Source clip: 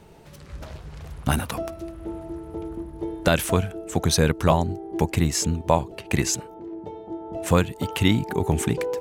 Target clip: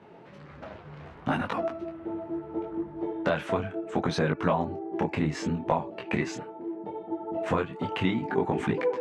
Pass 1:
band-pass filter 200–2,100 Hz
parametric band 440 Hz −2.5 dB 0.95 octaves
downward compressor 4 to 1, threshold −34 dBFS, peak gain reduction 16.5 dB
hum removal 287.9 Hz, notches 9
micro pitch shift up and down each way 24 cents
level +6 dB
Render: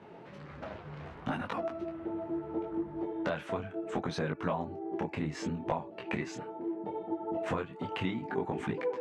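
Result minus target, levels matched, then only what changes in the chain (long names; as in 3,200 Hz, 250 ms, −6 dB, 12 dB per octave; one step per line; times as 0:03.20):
downward compressor: peak gain reduction +7.5 dB
change: downward compressor 4 to 1, threshold −24 dBFS, peak gain reduction 9 dB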